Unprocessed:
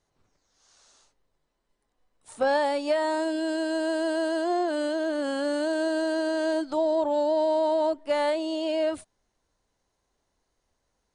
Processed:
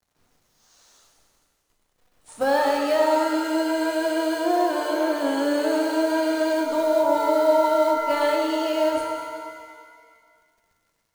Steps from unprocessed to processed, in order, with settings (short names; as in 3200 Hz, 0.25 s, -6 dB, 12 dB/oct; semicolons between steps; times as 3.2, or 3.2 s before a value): companded quantiser 6-bit; shimmer reverb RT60 1.9 s, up +7 st, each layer -8 dB, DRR 1 dB; gain +1 dB